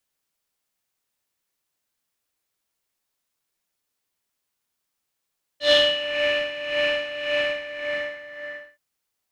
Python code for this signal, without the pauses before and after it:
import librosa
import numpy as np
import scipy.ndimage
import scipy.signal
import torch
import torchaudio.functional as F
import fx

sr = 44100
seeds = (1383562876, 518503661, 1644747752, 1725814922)

y = fx.sub_patch_tremolo(sr, seeds[0], note=74, wave='square', wave2='saw', interval_st=0, detune_cents=16, level2_db=-9.5, sub_db=-19.5, noise_db=-3.0, kind='lowpass', cutoff_hz=1900.0, q=6.2, env_oct=1.0, env_decay_s=0.53, env_sustain_pct=40, attack_ms=106.0, decay_s=0.58, sustain_db=-6.0, release_s=1.49, note_s=1.69, lfo_hz=1.8, tremolo_db=11.5)